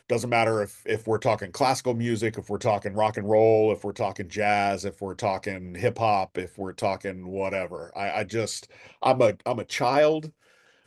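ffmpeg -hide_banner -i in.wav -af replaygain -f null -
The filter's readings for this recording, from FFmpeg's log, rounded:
track_gain = +4.3 dB
track_peak = 0.314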